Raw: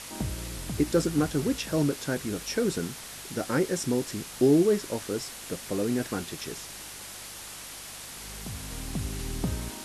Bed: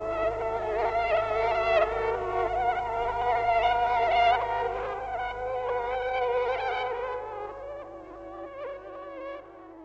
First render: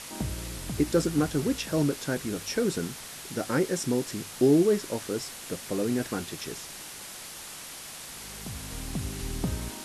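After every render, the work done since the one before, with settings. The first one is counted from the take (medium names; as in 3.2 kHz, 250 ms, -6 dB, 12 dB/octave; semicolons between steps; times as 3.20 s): de-hum 50 Hz, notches 2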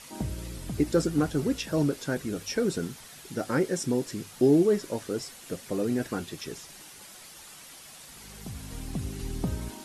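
noise reduction 8 dB, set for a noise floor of -42 dBFS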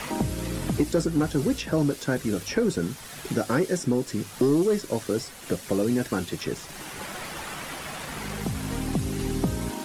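waveshaping leveller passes 1; three bands compressed up and down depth 70%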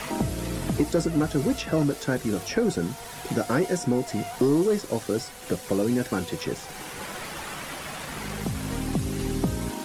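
add bed -15.5 dB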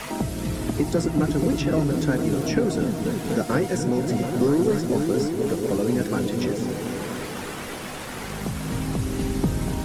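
delay with an opening low-pass 243 ms, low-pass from 200 Hz, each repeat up 1 oct, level 0 dB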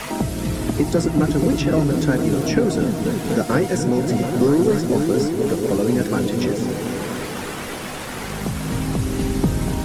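trim +4 dB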